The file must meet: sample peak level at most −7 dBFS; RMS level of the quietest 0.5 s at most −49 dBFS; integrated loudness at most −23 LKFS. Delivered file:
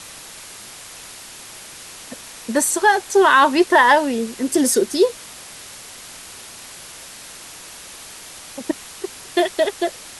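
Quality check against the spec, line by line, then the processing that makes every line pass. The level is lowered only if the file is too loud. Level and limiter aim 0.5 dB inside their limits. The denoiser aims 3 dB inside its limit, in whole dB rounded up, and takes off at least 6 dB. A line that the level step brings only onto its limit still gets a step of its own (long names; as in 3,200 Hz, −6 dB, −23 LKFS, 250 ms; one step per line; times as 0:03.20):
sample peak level −3.0 dBFS: out of spec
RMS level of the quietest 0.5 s −39 dBFS: out of spec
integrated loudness −17.5 LKFS: out of spec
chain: broadband denoise 7 dB, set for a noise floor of −39 dBFS
level −6 dB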